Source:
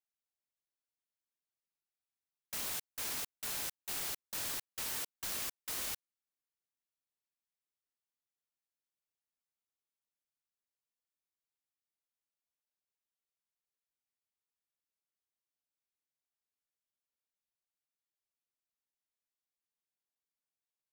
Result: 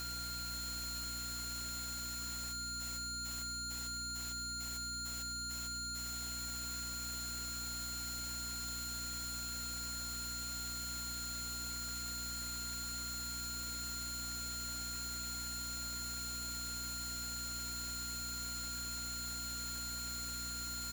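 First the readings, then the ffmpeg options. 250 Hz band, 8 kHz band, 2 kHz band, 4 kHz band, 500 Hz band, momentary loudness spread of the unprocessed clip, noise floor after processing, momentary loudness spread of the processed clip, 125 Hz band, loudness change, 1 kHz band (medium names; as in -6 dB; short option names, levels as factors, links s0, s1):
+13.0 dB, +7.5 dB, +3.0 dB, +10.5 dB, -1.5 dB, 1 LU, -42 dBFS, 0 LU, +18.5 dB, -1.5 dB, +11.0 dB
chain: -filter_complex "[0:a]aeval=exprs='val(0)+0.5*0.0112*sgn(val(0))':c=same,afftfilt=real='re*lt(hypot(re,im),0.00178)':imag='im*lt(hypot(re,im),0.00178)':win_size=1024:overlap=0.75,highshelf=f=2500:g=7.5,bandreject=f=50:t=h:w=6,bandreject=f=100:t=h:w=6,bandreject=f=150:t=h:w=6,bandreject=f=200:t=h:w=6,bandreject=f=250:t=h:w=6,bandreject=f=300:t=h:w=6,bandreject=f=350:t=h:w=6,aecho=1:1:4.7:0.43,acontrast=90,aeval=exprs='val(0)+0.0316*sin(2*PI*1400*n/s)':c=same,aeval=exprs='0.0106*(abs(mod(val(0)/0.0106+3,4)-2)-1)':c=same,aeval=exprs='val(0)+0.00398*(sin(2*PI*60*n/s)+sin(2*PI*2*60*n/s)/2+sin(2*PI*3*60*n/s)/3+sin(2*PI*4*60*n/s)/4+sin(2*PI*5*60*n/s)/5)':c=same,asplit=2[s0][s1];[s1]aecho=0:1:554|1108|1662|2216|2770|3324:0.299|0.155|0.0807|0.042|0.0218|0.0114[s2];[s0][s2]amix=inputs=2:normalize=0,volume=1.12"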